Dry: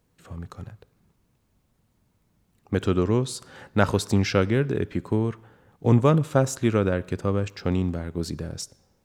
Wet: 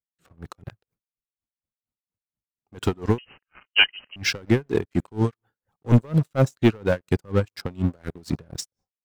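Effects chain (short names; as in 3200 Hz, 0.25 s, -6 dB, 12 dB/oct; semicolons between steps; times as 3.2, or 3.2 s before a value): gate with hold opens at -51 dBFS; reverb removal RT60 0.74 s; de-esser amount 65%; sample leveller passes 3; AGC gain up to 11.5 dB; 3.18–4.16 inverted band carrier 3000 Hz; dB-linear tremolo 4.2 Hz, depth 30 dB; gain -6 dB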